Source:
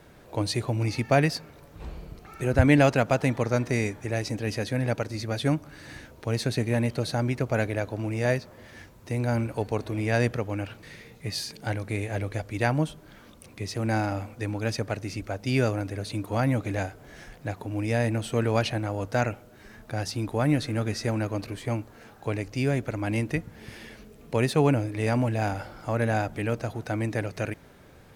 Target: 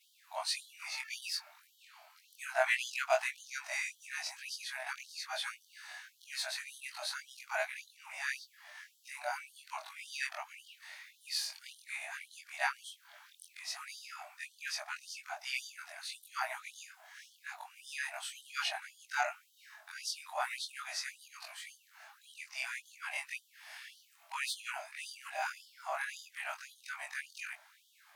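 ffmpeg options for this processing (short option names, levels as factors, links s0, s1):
-af "afftfilt=real='re':imag='-im':win_size=2048:overlap=0.75,afftfilt=real='re*gte(b*sr/1024,590*pow(3000/590,0.5+0.5*sin(2*PI*1.8*pts/sr)))':imag='im*gte(b*sr/1024,590*pow(3000/590,0.5+0.5*sin(2*PI*1.8*pts/sr)))':win_size=1024:overlap=0.75,volume=1.19"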